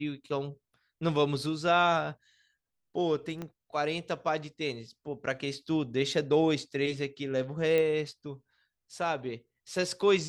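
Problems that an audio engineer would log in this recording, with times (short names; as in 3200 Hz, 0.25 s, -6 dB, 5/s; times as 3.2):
3.42 pop -24 dBFS
7.78 pop -17 dBFS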